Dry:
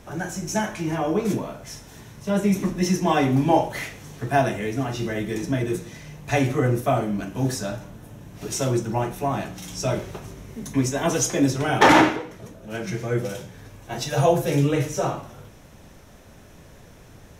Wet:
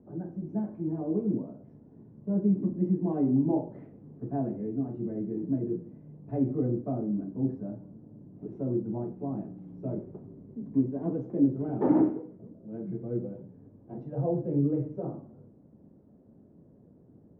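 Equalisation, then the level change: ladder band-pass 330 Hz, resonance 25%; tilt EQ -4 dB/octave; bass shelf 330 Hz +3.5 dB; -3.0 dB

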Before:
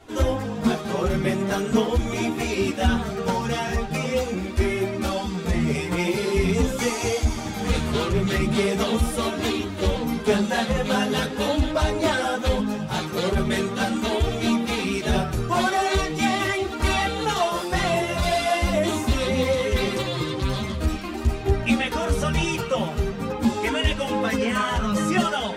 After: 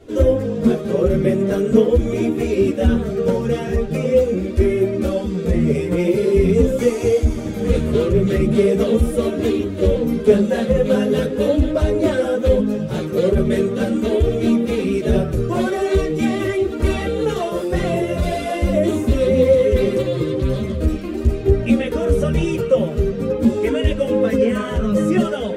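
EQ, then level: dynamic bell 4.8 kHz, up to -6 dB, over -44 dBFS, Q 1.1; resonant low shelf 650 Hz +7 dB, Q 3; -2.0 dB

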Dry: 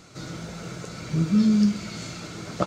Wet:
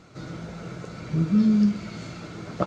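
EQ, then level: low-pass 2.1 kHz 6 dB/octave; 0.0 dB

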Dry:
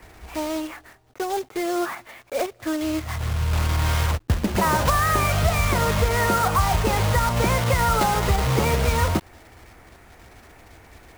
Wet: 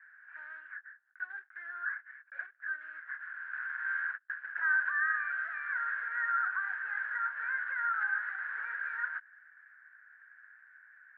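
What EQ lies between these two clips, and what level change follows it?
Butterworth band-pass 1.6 kHz, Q 6.7; distance through air 180 m; +6.5 dB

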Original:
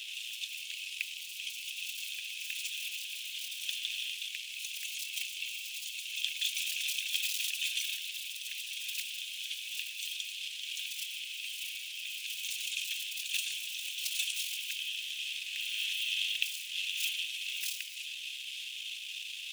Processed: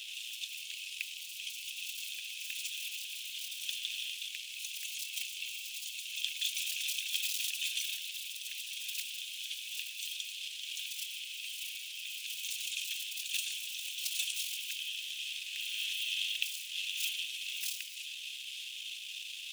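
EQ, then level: peaking EQ 2 kHz -4 dB 1.2 oct; 0.0 dB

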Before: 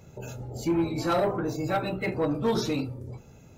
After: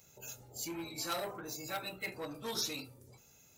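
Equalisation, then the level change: pre-emphasis filter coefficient 0.9; bass shelf 290 Hz -5 dB; +4.0 dB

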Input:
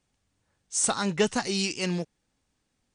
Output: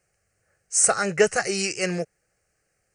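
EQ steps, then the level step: bass shelf 93 Hz -12 dB; static phaser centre 960 Hz, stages 6; +9.0 dB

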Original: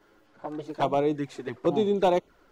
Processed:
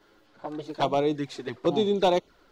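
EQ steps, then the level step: dynamic bell 5.2 kHz, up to +4 dB, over -56 dBFS, Q 2.3; peaking EQ 4 kHz +7 dB 0.84 oct; 0.0 dB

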